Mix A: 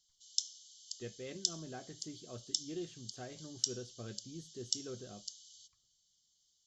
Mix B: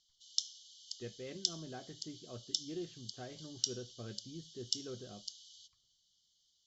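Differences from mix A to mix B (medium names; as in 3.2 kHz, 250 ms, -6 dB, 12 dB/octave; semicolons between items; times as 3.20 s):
background +7.5 dB; master: add distance through air 150 m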